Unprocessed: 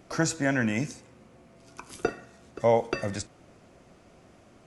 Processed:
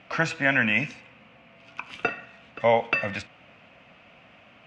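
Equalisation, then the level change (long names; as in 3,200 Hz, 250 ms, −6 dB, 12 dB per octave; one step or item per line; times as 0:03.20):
high-pass filter 220 Hz 6 dB per octave
low-pass with resonance 2,700 Hz, resonance Q 3.8
parametric band 370 Hz −14.5 dB 0.5 octaves
+4.0 dB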